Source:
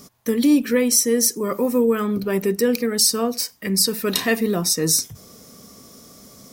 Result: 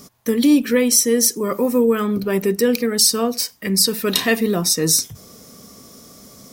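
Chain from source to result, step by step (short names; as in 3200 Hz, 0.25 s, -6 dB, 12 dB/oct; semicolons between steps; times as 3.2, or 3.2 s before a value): dynamic EQ 3300 Hz, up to +4 dB, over -40 dBFS, Q 2.5; gain +2 dB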